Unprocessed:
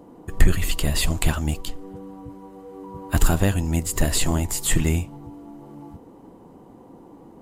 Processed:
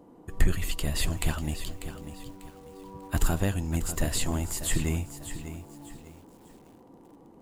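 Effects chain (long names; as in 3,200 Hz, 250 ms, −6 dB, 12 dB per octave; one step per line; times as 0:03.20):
feedback echo at a low word length 594 ms, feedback 35%, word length 7 bits, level −11 dB
level −7 dB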